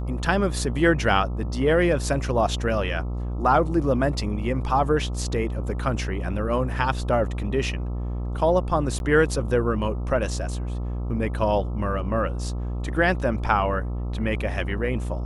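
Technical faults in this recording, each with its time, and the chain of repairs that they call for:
buzz 60 Hz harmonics 22 -28 dBFS
8.99–9.00 s: dropout 11 ms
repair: de-hum 60 Hz, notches 22; interpolate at 8.99 s, 11 ms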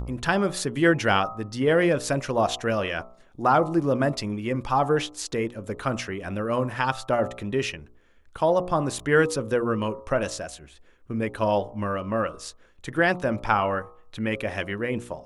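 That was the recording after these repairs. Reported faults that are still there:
nothing left

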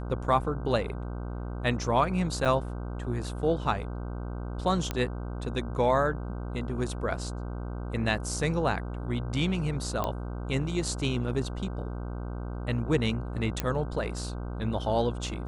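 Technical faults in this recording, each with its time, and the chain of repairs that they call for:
buzz 60 Hz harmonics 26 -35 dBFS
2.45–2.46 s: dropout 6.6 ms
4.91 s: pop -15 dBFS
10.04 s: pop -15 dBFS
13.60 s: pop -12 dBFS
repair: de-click; de-hum 60 Hz, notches 26; interpolate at 2.45 s, 6.6 ms

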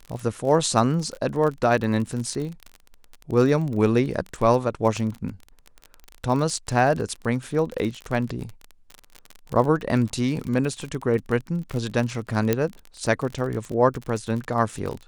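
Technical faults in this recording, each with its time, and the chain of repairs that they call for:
crackle 32 per s -28 dBFS
12.53 s: pop -7 dBFS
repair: de-click

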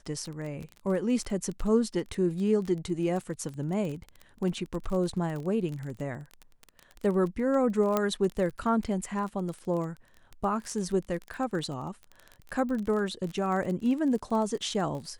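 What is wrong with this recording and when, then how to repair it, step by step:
crackle 23 per s -33 dBFS
7.97 s: pop -12 dBFS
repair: de-click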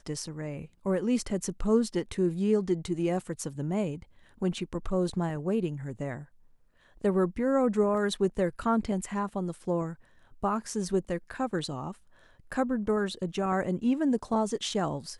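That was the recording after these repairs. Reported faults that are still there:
7.97 s: pop

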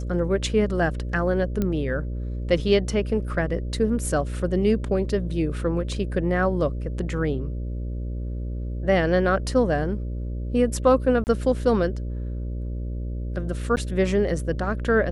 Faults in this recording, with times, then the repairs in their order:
buzz 60 Hz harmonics 10 -29 dBFS
1.62 s: pop -13 dBFS
11.24–11.27 s: dropout 29 ms
13.76–13.77 s: dropout 9.6 ms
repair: de-click; de-hum 60 Hz, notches 10; interpolate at 11.24 s, 29 ms; interpolate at 13.76 s, 9.6 ms

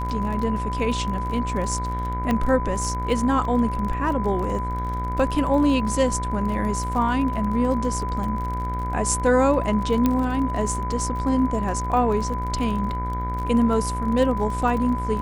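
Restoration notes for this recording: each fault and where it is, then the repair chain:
buzz 60 Hz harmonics 39 -28 dBFS
crackle 34 per s -29 dBFS
whine 1 kHz -28 dBFS
2.31 s: pop -11 dBFS
10.06 s: pop -8 dBFS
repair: de-click; de-hum 60 Hz, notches 39; band-stop 1 kHz, Q 30

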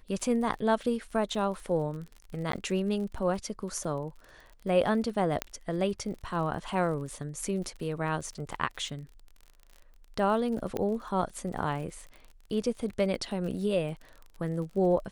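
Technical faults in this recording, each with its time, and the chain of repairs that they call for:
crackle 41 per s -39 dBFS
2.52–2.53 s: dropout 13 ms
5.42 s: pop -13 dBFS
10.77 s: pop -19 dBFS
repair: de-click; interpolate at 2.52 s, 13 ms

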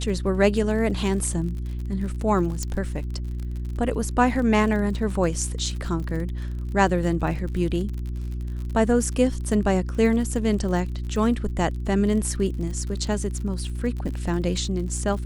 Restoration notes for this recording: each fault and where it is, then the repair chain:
crackle 46 per s -32 dBFS
hum 60 Hz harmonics 6 -29 dBFS
2.63 s: pop -15 dBFS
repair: de-click; de-hum 60 Hz, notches 6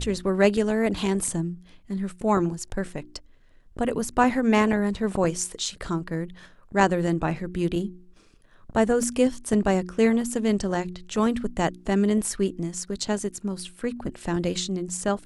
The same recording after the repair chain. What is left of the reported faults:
nothing left

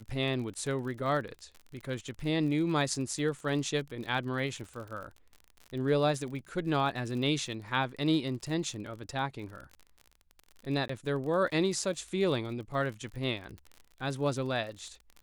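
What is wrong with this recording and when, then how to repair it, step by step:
crackle 50 per s -39 dBFS
10.88–10.89 s: dropout 14 ms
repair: de-click; interpolate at 10.88 s, 14 ms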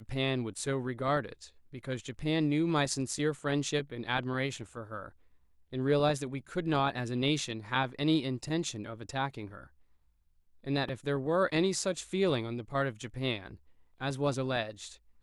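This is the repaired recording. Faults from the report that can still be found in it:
nothing left

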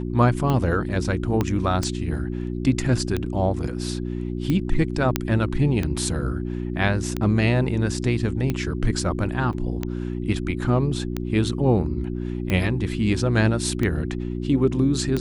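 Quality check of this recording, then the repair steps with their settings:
hum 60 Hz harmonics 6 -28 dBFS
tick 45 rpm -12 dBFS
1.41 s: pop -10 dBFS
5.16 s: pop -4 dBFS
9.53–9.54 s: dropout 5.9 ms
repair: de-click; de-hum 60 Hz, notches 6; interpolate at 9.53 s, 5.9 ms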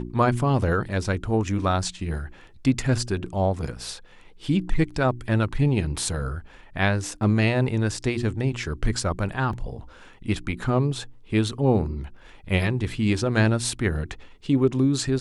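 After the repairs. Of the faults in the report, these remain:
1.41 s: pop

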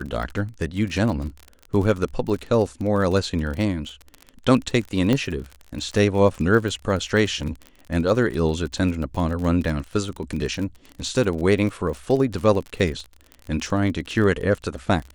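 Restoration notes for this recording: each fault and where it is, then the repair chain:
crackle 37 per s -28 dBFS
5.13 s: pop -9 dBFS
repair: de-click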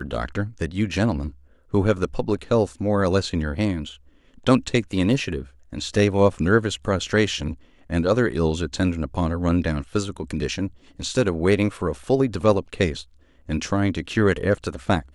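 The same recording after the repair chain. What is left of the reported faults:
5.13 s: pop

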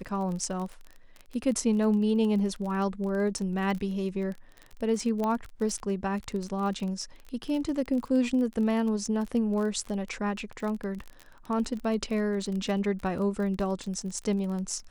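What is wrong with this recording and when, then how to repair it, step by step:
crackle 26 per s -33 dBFS
5.24 s: pop -18 dBFS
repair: de-click

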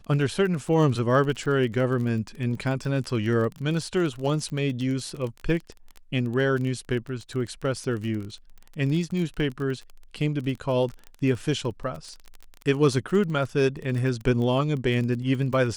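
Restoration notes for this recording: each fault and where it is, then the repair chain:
crackle 24 per s -31 dBFS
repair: de-click

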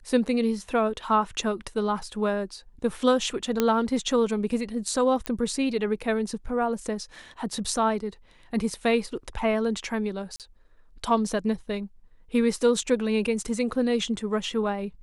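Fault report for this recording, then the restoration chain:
3.60 s: pop -8 dBFS
5.26 s: pop -14 dBFS
10.36–10.40 s: dropout 38 ms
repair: de-click; interpolate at 10.36 s, 38 ms

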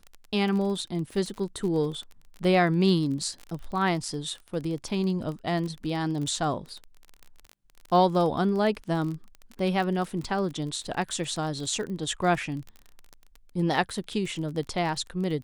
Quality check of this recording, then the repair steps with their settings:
crackle 30 per s -33 dBFS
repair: de-click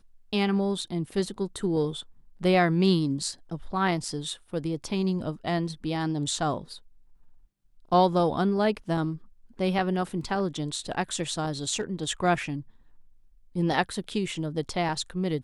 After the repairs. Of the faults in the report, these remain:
nothing left

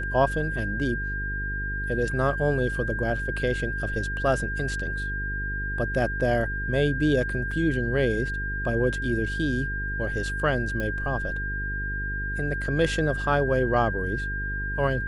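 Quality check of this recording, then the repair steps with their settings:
buzz 50 Hz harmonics 9 -32 dBFS
whine 1.6 kHz -30 dBFS
7.51 s: dropout 4.1 ms
10.80 s: pop -18 dBFS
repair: de-click; de-hum 50 Hz, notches 9; band-stop 1.6 kHz, Q 30; interpolate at 7.51 s, 4.1 ms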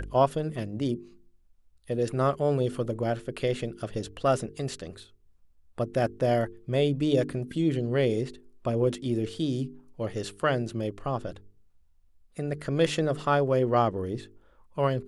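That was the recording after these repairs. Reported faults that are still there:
10.80 s: pop

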